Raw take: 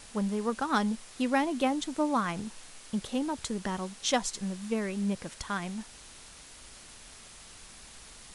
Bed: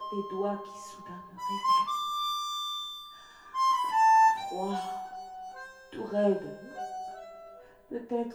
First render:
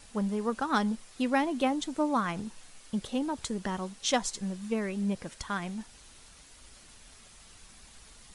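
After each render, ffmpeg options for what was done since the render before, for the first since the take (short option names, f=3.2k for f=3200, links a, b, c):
-af "afftdn=nr=6:nf=-51"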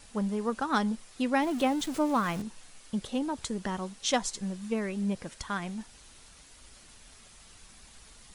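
-filter_complex "[0:a]asettb=1/sr,asplit=3[a][b][c];[a]atrim=end=1.424[d];[b]atrim=start=1.42:end=2.42,asetpts=PTS-STARTPTS,afade=t=in:d=0.004:c=qsin,afade=t=out:st=0.996:d=0.004:c=qsin,aeval=exprs='val(0)+0.5*0.0133*sgn(val(0))':c=same[e];[c]atrim=start=2.416[f];[d][e]acrossfade=d=0.004:c1=hsin:c2=qsin[g];[g][f]acrossfade=d=0.004:c1=qsin:c2=hsin"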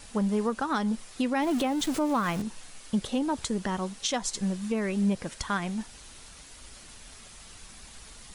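-af "acontrast=38,alimiter=limit=-18dB:level=0:latency=1:release=228"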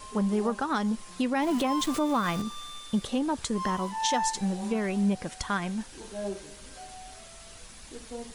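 -filter_complex "[1:a]volume=-8.5dB[a];[0:a][a]amix=inputs=2:normalize=0"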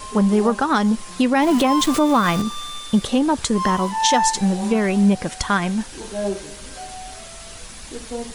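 -af "volume=10dB"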